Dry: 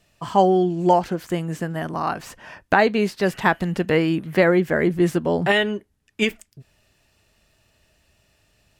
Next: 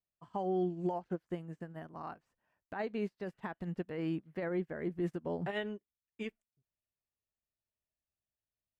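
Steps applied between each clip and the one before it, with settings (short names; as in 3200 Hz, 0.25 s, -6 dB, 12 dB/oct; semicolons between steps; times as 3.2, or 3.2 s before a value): high shelf 2600 Hz -10.5 dB; limiter -16 dBFS, peak gain reduction 11.5 dB; upward expander 2.5:1, over -39 dBFS; gain -8.5 dB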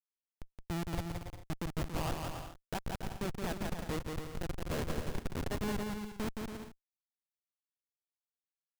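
negative-ratio compressor -40 dBFS, ratio -0.5; Schmitt trigger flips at -37 dBFS; bouncing-ball echo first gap 0.17 s, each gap 0.65×, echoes 5; gain +10 dB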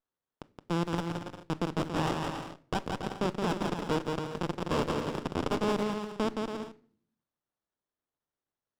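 speaker cabinet 250–6100 Hz, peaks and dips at 720 Hz -9 dB, 1800 Hz +3 dB, 4200 Hz +4 dB; shoebox room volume 650 m³, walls furnished, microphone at 0.49 m; running maximum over 17 samples; gain +9 dB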